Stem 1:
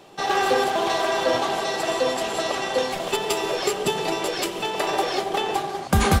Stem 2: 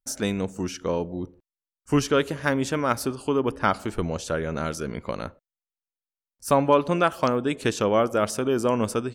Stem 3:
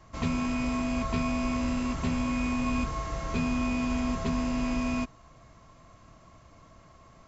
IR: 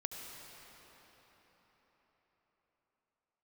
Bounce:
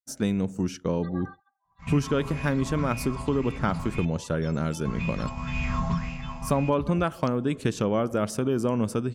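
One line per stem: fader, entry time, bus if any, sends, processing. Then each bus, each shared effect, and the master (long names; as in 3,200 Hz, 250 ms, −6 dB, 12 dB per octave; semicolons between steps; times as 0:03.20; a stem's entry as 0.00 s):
−16.5 dB, 0.85 s, send −5 dB, gate on every frequency bin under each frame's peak −10 dB strong; Chebyshev band-stop filter 210–980 Hz, order 3
−3.0 dB, 0.00 s, no send, parametric band 150 Hz +10.5 dB 1.9 octaves
+2.0 dB, 1.65 s, muted 0:04.05–0:04.85, no send, low shelf with overshoot 230 Hz +10.5 dB, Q 3; mains-hum notches 50/100/150/200/250 Hz; auto-filter bell 1.9 Hz 850–2,600 Hz +16 dB; automatic ducking −13 dB, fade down 0.70 s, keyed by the second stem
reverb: on, RT60 4.9 s, pre-delay 65 ms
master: downward expander −30 dBFS; downward compressor 2 to 1, threshold −23 dBFS, peak gain reduction 6.5 dB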